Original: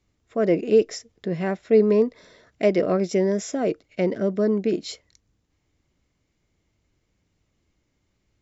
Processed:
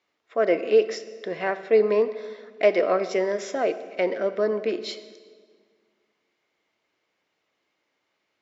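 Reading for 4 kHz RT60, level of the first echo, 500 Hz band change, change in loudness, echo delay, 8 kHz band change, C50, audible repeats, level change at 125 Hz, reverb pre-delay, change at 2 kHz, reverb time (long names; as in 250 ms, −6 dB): 1.4 s, no echo audible, −0.5 dB, −1.5 dB, no echo audible, can't be measured, 13.0 dB, no echo audible, below −10 dB, 8 ms, +4.5 dB, 1.8 s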